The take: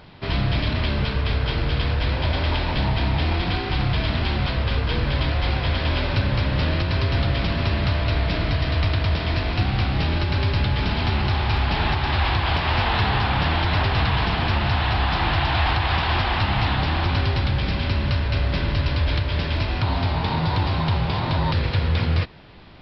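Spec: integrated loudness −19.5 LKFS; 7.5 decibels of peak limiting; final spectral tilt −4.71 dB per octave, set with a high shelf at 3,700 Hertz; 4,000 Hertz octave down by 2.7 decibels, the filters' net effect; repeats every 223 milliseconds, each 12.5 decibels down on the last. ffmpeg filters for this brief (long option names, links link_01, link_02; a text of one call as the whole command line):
ffmpeg -i in.wav -af "highshelf=frequency=3700:gain=4,equalizer=frequency=4000:width_type=o:gain=-6,alimiter=limit=-17.5dB:level=0:latency=1,aecho=1:1:223|446|669:0.237|0.0569|0.0137,volume=6.5dB" out.wav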